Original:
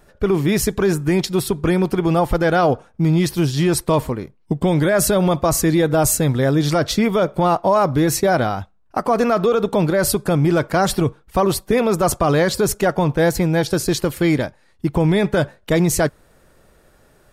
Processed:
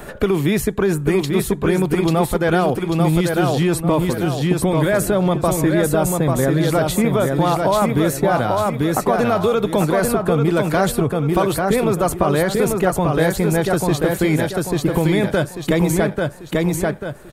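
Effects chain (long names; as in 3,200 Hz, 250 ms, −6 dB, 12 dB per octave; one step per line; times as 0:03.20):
parametric band 5,300 Hz −8.5 dB 0.61 octaves
repeating echo 841 ms, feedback 32%, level −4 dB
multiband upward and downward compressor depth 70%
level −1.5 dB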